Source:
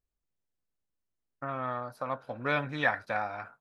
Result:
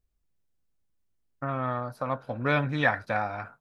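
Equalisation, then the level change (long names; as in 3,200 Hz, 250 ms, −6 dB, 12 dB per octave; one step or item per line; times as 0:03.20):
low-shelf EQ 240 Hz +9 dB
+2.5 dB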